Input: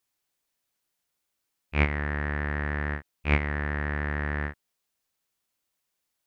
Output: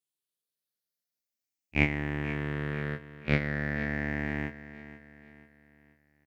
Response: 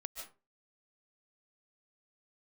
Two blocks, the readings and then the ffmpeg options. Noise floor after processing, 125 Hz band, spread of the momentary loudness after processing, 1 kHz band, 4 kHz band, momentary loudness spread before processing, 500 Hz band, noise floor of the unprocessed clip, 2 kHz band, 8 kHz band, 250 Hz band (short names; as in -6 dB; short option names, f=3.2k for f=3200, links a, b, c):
under -85 dBFS, -3.0 dB, 15 LU, -6.5 dB, 0.0 dB, 7 LU, -0.5 dB, -81 dBFS, -2.0 dB, n/a, +1.5 dB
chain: -filter_complex "[0:a]afftfilt=real='re*pow(10,7/40*sin(2*PI*(0.65*log(max(b,1)*sr/1024/100)/log(2)-(0.39)*(pts-256)/sr)))':imag='im*pow(10,7/40*sin(2*PI*(0.65*log(max(b,1)*sr/1024/100)/log(2)-(0.39)*(pts-256)/sr)))':win_size=1024:overlap=0.75,agate=range=-12dB:threshold=-30dB:ratio=16:detection=peak,highpass=120,equalizer=f=1.1k:t=o:w=1.4:g=-11.5,asplit=2[a][b];[b]adelay=21,volume=-11dB[c];[a][c]amix=inputs=2:normalize=0,asplit=2[d][e];[e]aecho=0:1:486|972|1458|1944:0.188|0.081|0.0348|0.015[f];[d][f]amix=inputs=2:normalize=0,volume=2dB"